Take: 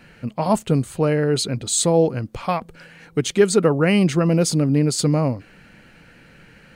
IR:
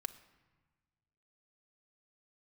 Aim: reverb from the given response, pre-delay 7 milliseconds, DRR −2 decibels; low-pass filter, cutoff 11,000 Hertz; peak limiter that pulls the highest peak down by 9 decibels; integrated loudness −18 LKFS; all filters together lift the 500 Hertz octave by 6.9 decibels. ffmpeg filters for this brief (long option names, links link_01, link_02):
-filter_complex "[0:a]lowpass=11000,equalizer=frequency=500:width_type=o:gain=8,alimiter=limit=-8.5dB:level=0:latency=1,asplit=2[link_01][link_02];[1:a]atrim=start_sample=2205,adelay=7[link_03];[link_02][link_03]afir=irnorm=-1:irlink=0,volume=4dB[link_04];[link_01][link_04]amix=inputs=2:normalize=0,volume=-4dB"